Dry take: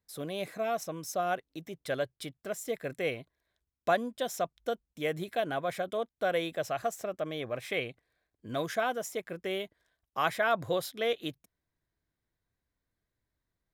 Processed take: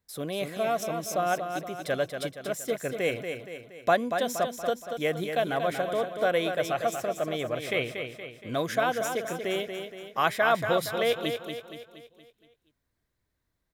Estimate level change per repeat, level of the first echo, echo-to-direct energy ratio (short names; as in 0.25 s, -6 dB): -6.0 dB, -7.0 dB, -6.0 dB